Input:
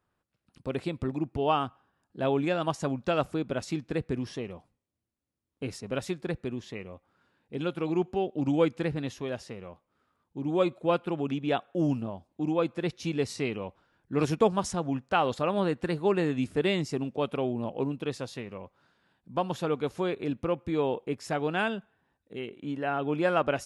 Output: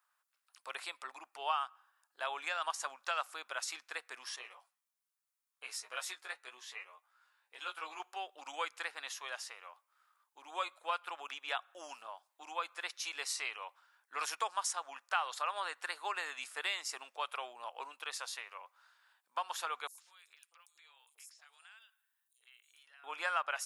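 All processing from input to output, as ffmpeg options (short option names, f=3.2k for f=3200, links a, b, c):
-filter_complex "[0:a]asettb=1/sr,asplit=3[a][b][c];[a]atrim=end=4.364[d];[b]atrim=start=4.36:end=8,asetpts=PTS-STARTPTS,afade=t=in:d=0.004:c=qsin,afade=t=out:st=3.636:d=0.004:c=qsin,flanger=delay=5.3:depth=2.1:regen=60:speed=1.8:shape=triangular,asplit=2[e][f];[f]adelay=16,volume=-2dB[g];[e][g]amix=inputs=2:normalize=0,atrim=end_sample=160524[h];[c]atrim=start=7.996[i];[d][h]acrossfade=d=0.004:c1=hsin:c2=qsin[j];[j][i]acrossfade=d=0.004:c1=qsin:c2=hsin,asettb=1/sr,asplit=3[k][l][m];[k]atrim=end=19.874[n];[l]atrim=start=19.87:end=23.04,asetpts=PTS-STARTPTS,afade=t=in:d=0.004:c=qsin,afade=t=out:st=3.166:d=0.004:c=qsin,aderivative,acompressor=threshold=-57dB:ratio=4:attack=3.2:release=140:knee=1:detection=peak,acrossover=split=790|5300[o][p][q];[o]adelay=80[r];[p]adelay=110[s];[r][s][q]amix=inputs=3:normalize=0,atrim=end_sample=139797[t];[m]atrim=start=23.036[u];[n][t]acrossfade=d=0.004:c1=hsin:c2=qsin[v];[v][u]acrossfade=d=0.004:c1=qsin:c2=hsin,highpass=f=1.1k:w=0.5412,highpass=f=1.1k:w=1.3066,equalizer=f=2.7k:w=0.45:g=-9,acompressor=threshold=-44dB:ratio=2,volume=9.5dB"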